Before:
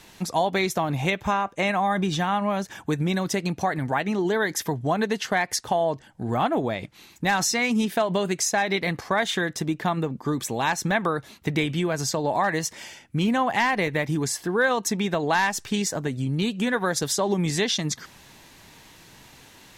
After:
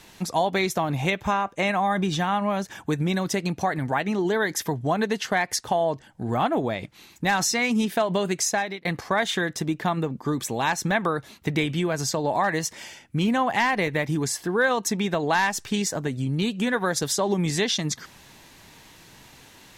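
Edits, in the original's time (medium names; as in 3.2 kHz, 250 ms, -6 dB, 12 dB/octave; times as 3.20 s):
8.52–8.85 s: fade out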